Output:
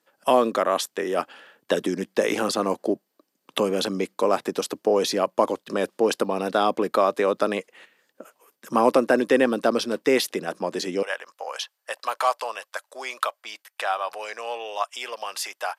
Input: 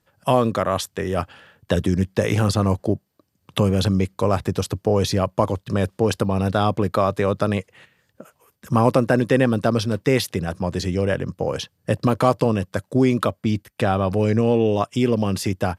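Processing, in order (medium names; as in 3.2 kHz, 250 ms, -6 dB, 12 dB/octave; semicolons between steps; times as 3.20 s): high-pass 260 Hz 24 dB/octave, from 11.03 s 740 Hz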